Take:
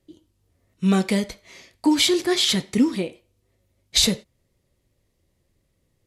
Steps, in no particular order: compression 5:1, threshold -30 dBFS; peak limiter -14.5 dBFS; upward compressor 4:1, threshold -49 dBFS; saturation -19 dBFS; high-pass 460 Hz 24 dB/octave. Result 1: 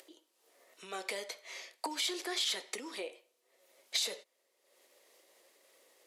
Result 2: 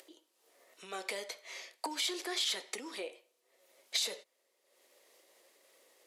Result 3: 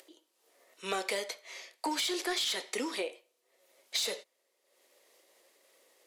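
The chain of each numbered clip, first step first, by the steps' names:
peak limiter > upward compressor > compression > high-pass > saturation; upward compressor > peak limiter > compression > saturation > high-pass; upward compressor > high-pass > peak limiter > saturation > compression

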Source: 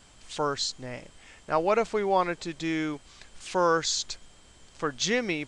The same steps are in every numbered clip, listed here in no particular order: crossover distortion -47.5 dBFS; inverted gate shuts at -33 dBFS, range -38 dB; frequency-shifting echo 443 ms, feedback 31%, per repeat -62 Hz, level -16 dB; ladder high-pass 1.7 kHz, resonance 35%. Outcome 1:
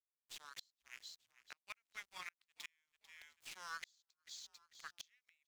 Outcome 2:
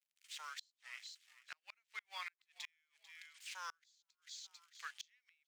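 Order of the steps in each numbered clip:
ladder high-pass > crossover distortion > frequency-shifting echo > inverted gate; crossover distortion > frequency-shifting echo > ladder high-pass > inverted gate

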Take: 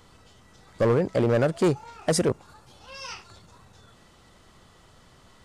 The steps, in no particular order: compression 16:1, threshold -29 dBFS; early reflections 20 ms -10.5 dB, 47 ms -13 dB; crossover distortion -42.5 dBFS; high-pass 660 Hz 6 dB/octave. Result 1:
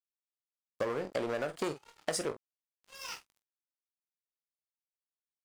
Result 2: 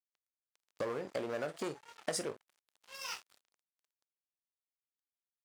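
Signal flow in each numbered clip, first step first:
high-pass > crossover distortion > early reflections > compression; early reflections > crossover distortion > compression > high-pass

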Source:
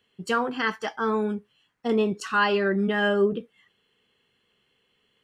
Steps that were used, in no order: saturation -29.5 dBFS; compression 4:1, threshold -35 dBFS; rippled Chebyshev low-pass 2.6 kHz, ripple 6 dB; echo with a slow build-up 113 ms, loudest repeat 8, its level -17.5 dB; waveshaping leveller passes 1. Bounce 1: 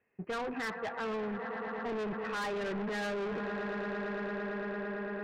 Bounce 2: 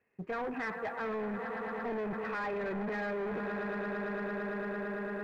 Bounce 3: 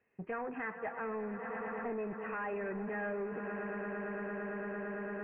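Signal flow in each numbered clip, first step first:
echo with a slow build-up > waveshaping leveller > rippled Chebyshev low-pass > saturation > compression; echo with a slow build-up > saturation > rippled Chebyshev low-pass > compression > waveshaping leveller; echo with a slow build-up > compression > waveshaping leveller > saturation > rippled Chebyshev low-pass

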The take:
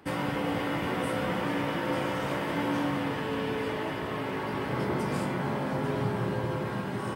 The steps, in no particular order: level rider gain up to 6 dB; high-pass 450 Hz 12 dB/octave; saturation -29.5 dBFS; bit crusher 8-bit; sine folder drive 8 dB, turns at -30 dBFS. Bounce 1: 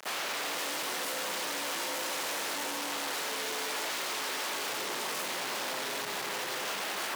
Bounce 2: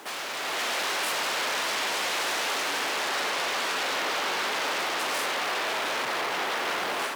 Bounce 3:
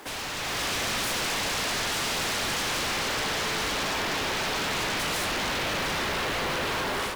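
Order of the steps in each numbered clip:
bit crusher > level rider > saturation > sine folder > high-pass; saturation > sine folder > level rider > bit crusher > high-pass; high-pass > sine folder > bit crusher > saturation > level rider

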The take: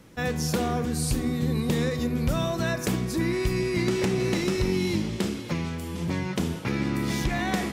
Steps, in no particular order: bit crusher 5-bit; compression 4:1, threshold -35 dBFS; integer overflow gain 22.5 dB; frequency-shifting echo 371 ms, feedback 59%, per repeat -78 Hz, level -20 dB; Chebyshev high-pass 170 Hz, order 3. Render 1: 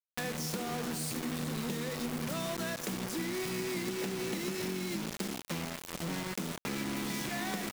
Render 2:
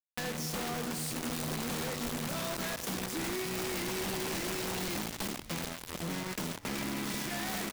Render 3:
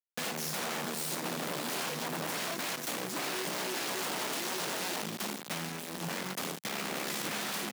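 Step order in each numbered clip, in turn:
frequency-shifting echo > Chebyshev high-pass > bit crusher > compression > integer overflow; Chebyshev high-pass > bit crusher > frequency-shifting echo > integer overflow > compression; integer overflow > frequency-shifting echo > bit crusher > compression > Chebyshev high-pass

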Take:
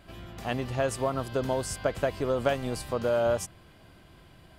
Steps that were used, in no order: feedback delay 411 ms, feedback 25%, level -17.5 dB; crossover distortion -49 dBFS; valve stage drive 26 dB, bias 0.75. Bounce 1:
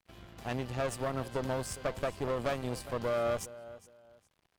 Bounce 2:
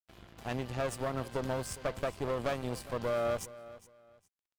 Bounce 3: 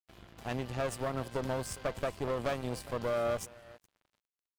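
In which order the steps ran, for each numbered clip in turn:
crossover distortion > feedback delay > valve stage; valve stage > crossover distortion > feedback delay; feedback delay > valve stage > crossover distortion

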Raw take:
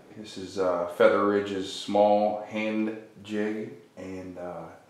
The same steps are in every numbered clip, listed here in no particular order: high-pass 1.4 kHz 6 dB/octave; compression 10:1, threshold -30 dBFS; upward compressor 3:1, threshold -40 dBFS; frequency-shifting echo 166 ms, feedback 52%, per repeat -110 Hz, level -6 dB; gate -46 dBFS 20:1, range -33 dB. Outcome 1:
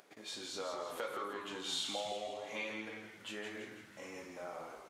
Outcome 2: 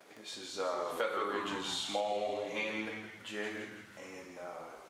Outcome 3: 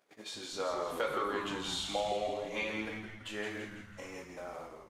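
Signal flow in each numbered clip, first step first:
compression > frequency-shifting echo > gate > upward compressor > high-pass; upward compressor > frequency-shifting echo > gate > high-pass > compression; high-pass > compression > upward compressor > gate > frequency-shifting echo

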